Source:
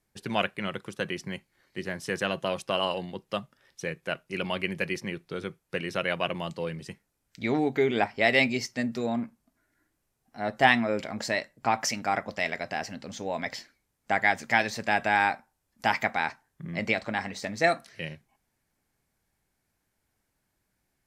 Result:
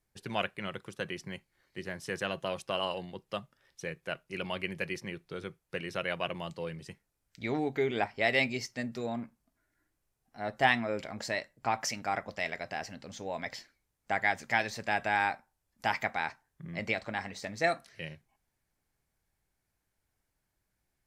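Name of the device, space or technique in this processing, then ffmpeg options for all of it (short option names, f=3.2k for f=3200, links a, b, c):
low shelf boost with a cut just above: -af "lowshelf=f=75:g=6,equalizer=f=230:t=o:w=0.75:g=-3.5,volume=-5dB"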